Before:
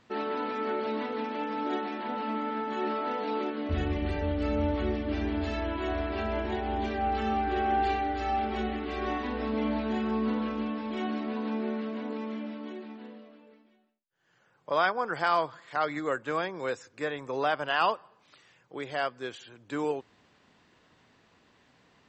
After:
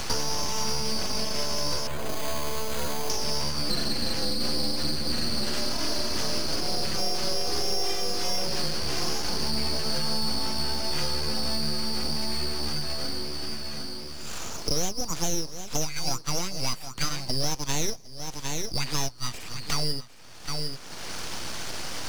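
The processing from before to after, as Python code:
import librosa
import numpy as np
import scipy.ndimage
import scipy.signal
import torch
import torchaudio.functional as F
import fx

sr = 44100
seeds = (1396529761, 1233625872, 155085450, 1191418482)

p1 = fx.band_swap(x, sr, width_hz=2000)
p2 = np.abs(p1)
p3 = fx.quant_float(p2, sr, bits=2)
p4 = p2 + (p3 * 10.0 ** (-7.0 / 20.0))
p5 = p4 + 10.0 ** (-17.0 / 20.0) * np.pad(p4, (int(757 * sr / 1000.0), 0))[:len(p4)]
p6 = fx.resample_bad(p5, sr, factor=8, down='filtered', up='hold', at=(1.87, 3.1))
p7 = fx.band_squash(p6, sr, depth_pct=100)
y = p7 * 10.0 ** (1.5 / 20.0)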